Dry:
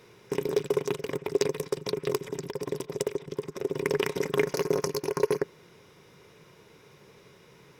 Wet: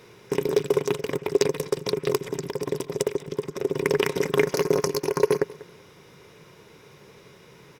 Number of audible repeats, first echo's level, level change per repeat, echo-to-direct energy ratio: 2, -20.0 dB, -11.5 dB, -19.5 dB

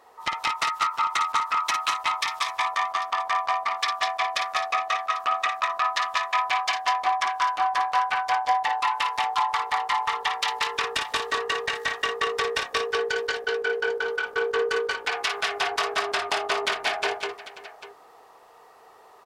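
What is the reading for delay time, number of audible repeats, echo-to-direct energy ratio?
54 ms, 4, -1.5 dB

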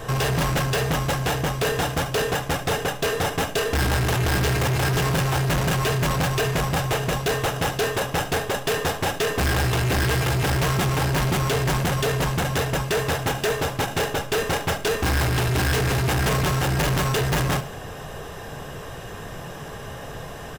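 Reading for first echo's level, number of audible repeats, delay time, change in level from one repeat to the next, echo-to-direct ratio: -16.0 dB, 3, 71 ms, -9.0 dB, -15.5 dB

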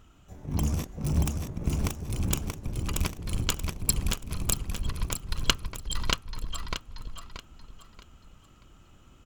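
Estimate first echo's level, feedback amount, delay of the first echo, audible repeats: -4.0 dB, 33%, 631 ms, 4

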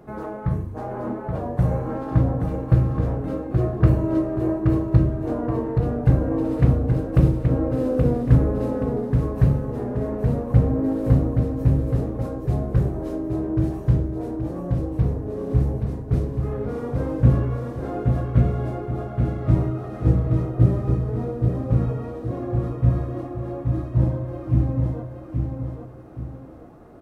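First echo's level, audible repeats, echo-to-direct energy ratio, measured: -5.0 dB, 2, -4.5 dB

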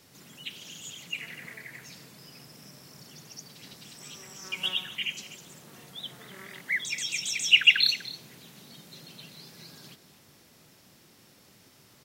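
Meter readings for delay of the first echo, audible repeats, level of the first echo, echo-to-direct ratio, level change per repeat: 247 ms, 1, -16.5 dB, -16.5 dB, no regular repeats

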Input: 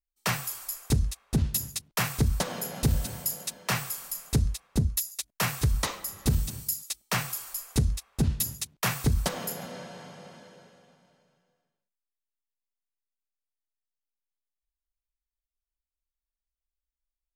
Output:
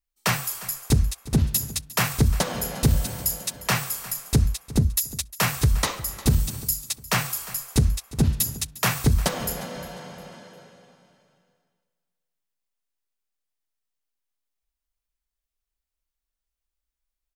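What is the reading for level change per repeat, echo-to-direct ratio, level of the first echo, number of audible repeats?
-10.0 dB, -18.0 dB, -18.5 dB, 2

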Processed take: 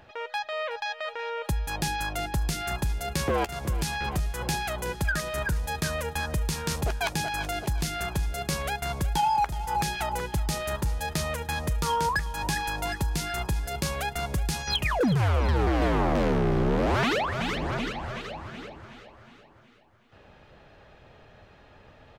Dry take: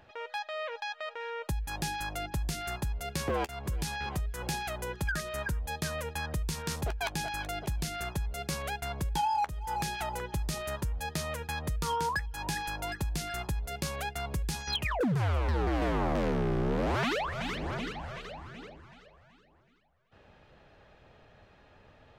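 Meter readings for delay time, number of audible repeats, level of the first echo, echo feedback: 369 ms, 5, -15.0 dB, 58%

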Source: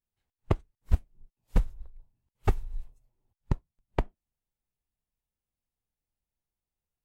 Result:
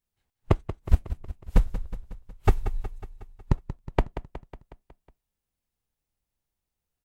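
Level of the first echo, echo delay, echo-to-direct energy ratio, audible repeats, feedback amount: -12.5 dB, 183 ms, -10.5 dB, 5, 58%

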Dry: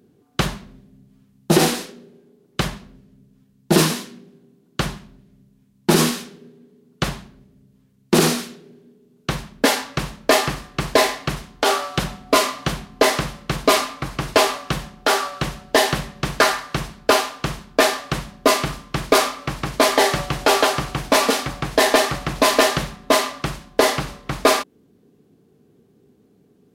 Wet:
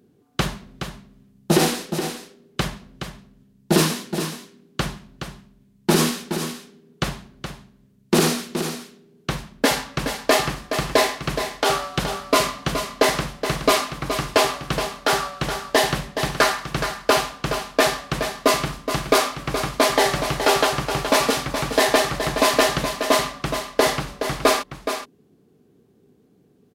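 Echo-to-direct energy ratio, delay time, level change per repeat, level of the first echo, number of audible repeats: -8.5 dB, 421 ms, no regular repeats, -8.5 dB, 1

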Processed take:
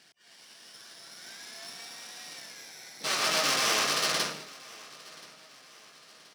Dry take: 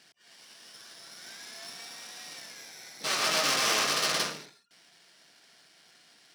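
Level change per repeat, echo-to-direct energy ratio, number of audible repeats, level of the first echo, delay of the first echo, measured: -7.0 dB, -20.0 dB, 2, -21.0 dB, 1028 ms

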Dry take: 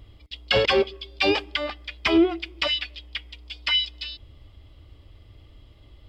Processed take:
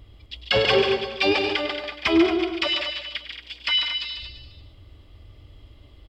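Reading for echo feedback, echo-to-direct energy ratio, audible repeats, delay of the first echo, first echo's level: no regular repeats, -2.5 dB, 9, 101 ms, -12.0 dB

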